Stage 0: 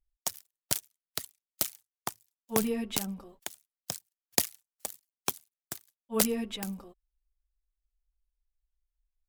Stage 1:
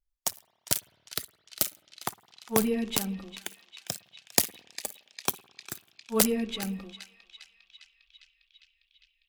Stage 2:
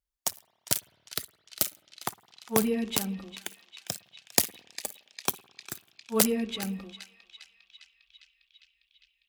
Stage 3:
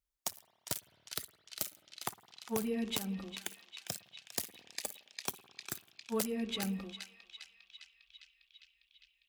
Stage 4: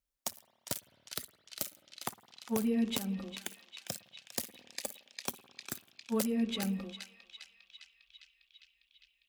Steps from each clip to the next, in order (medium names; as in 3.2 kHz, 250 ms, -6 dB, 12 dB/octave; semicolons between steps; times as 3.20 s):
band-passed feedback delay 403 ms, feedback 80%, band-pass 3 kHz, level -10 dB; spring tank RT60 1.3 s, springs 52/57 ms, chirp 30 ms, DRR 16.5 dB; spectral noise reduction 6 dB; trim +3 dB
high-pass 46 Hz
compression 4:1, threshold -30 dBFS, peak gain reduction 12.5 dB; saturation -19.5 dBFS, distortion -14 dB; trim -1 dB
small resonant body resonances 240/540 Hz, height 7 dB